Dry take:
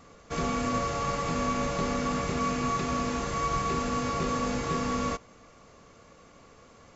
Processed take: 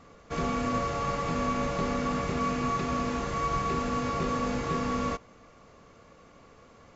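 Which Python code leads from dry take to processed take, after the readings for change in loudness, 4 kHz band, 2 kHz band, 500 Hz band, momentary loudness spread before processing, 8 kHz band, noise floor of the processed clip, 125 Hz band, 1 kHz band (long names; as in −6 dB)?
−0.5 dB, −2.5 dB, −1.0 dB, 0.0 dB, 2 LU, can't be measured, −55 dBFS, 0.0 dB, −0.5 dB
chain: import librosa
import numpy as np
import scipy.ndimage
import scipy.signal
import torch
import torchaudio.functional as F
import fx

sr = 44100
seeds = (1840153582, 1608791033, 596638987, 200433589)

y = fx.high_shelf(x, sr, hz=6800.0, db=-11.5)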